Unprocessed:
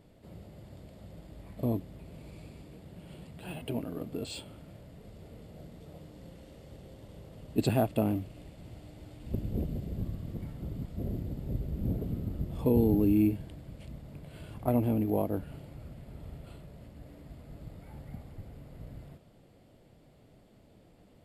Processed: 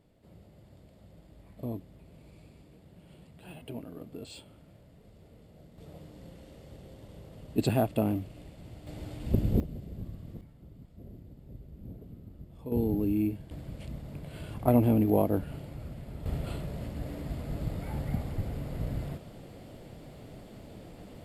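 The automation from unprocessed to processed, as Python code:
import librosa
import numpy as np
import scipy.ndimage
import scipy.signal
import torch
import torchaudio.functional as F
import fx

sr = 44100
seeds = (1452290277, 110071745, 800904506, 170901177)

y = fx.gain(x, sr, db=fx.steps((0.0, -6.0), (5.78, 0.5), (8.87, 7.5), (9.6, -5.0), (10.41, -13.0), (12.72, -3.5), (13.51, 4.5), (16.26, 12.0)))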